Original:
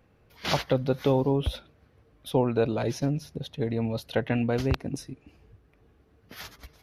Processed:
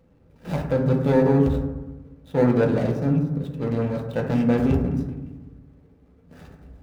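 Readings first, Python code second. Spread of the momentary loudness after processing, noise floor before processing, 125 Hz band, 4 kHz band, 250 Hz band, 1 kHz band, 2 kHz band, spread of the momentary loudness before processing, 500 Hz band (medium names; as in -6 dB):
13 LU, -63 dBFS, +6.5 dB, no reading, +7.5 dB, +1.5 dB, +1.0 dB, 19 LU, +4.5 dB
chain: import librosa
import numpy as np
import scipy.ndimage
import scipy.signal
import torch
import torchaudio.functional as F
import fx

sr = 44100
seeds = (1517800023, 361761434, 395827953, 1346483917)

y = scipy.ndimage.median_filter(x, 41, mode='constant')
y = fx.transient(y, sr, attack_db=-6, sustain_db=2)
y = fx.rev_fdn(y, sr, rt60_s=1.1, lf_ratio=1.35, hf_ratio=0.3, size_ms=35.0, drr_db=0.0)
y = F.gain(torch.from_numpy(y), 3.5).numpy()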